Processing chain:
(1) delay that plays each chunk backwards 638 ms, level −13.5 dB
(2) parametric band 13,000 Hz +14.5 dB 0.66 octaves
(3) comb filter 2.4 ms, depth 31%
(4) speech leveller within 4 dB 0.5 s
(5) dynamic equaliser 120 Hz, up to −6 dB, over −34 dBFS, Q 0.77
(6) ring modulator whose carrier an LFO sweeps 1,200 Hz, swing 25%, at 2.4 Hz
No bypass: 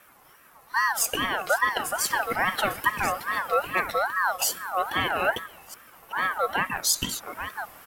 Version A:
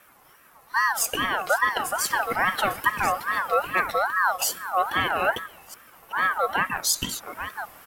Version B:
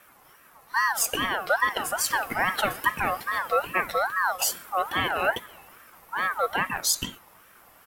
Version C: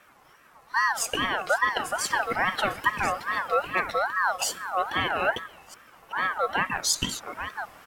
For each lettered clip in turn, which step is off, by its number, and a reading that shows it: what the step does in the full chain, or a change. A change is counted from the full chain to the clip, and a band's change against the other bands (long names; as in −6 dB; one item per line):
5, 1 kHz band +2.0 dB
1, change in momentary loudness spread −6 LU
2, 8 kHz band −2.0 dB